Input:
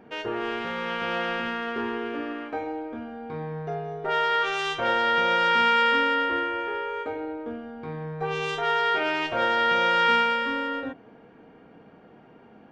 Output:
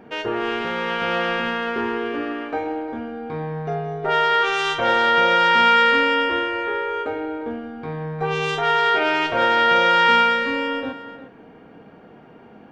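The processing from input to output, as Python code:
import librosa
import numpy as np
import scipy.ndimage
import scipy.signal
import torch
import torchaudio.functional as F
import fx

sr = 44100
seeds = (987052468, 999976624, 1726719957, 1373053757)

y = x + 10.0 ** (-13.5 / 20.0) * np.pad(x, (int(354 * sr / 1000.0), 0))[:len(x)]
y = y * 10.0 ** (5.5 / 20.0)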